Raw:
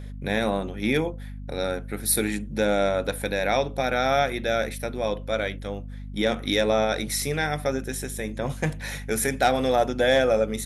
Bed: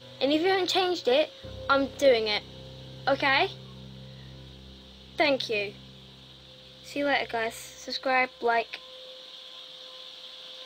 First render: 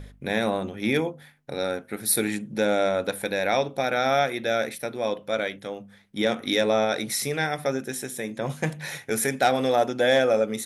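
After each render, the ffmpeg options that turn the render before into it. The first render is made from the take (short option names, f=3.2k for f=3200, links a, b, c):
-af "bandreject=f=50:t=h:w=4,bandreject=f=100:t=h:w=4,bandreject=f=150:t=h:w=4,bandreject=f=200:t=h:w=4,bandreject=f=250:t=h:w=4"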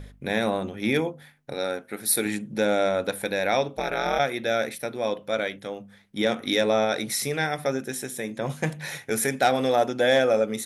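-filter_complex "[0:a]asettb=1/sr,asplit=3[a][b][c];[a]atrim=end=1.534[d];[b]atrim=start=1.53:end=2.26,asetpts=PTS-STARTPTS,afade=t=in:d=0.004:c=qsin,afade=t=out:st=0.726:d=0.004:c=qsin,lowshelf=f=150:g=-10[e];[c]atrim=start=2.256[f];[d][e]acrossfade=d=0.004:c1=hsin:c2=qsin[g];[g][f]acrossfade=d=0.004:c1=qsin:c2=hsin,asplit=3[h][i][j];[h]afade=t=out:st=3.76:d=0.02[k];[i]aeval=exprs='val(0)*sin(2*PI*87*n/s)':c=same,afade=t=in:st=3.76:d=0.02,afade=t=out:st=4.18:d=0.02[l];[j]afade=t=in:st=4.18:d=0.02[m];[k][l][m]amix=inputs=3:normalize=0"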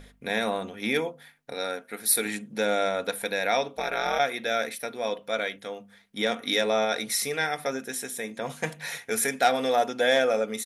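-af "lowshelf=f=360:g=-10,aecho=1:1:4.3:0.36"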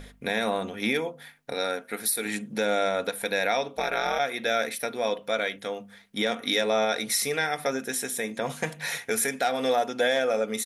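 -filter_complex "[0:a]asplit=2[a][b];[b]acompressor=threshold=-33dB:ratio=6,volume=-3dB[c];[a][c]amix=inputs=2:normalize=0,alimiter=limit=-14dB:level=0:latency=1:release=265"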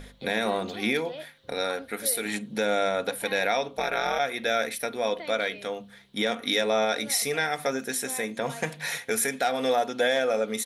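-filter_complex "[1:a]volume=-17dB[a];[0:a][a]amix=inputs=2:normalize=0"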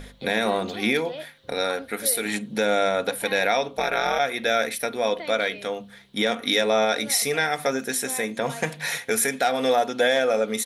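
-af "volume=3.5dB"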